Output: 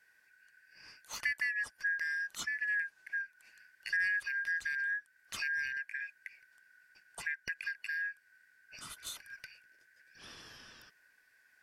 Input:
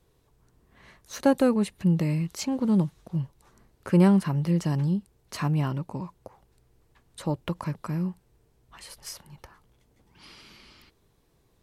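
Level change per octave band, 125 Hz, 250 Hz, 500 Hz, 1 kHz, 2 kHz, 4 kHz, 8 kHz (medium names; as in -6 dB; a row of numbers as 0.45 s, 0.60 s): under -40 dB, under -40 dB, under -30 dB, -20.0 dB, +12.0 dB, -4.0 dB, -5.5 dB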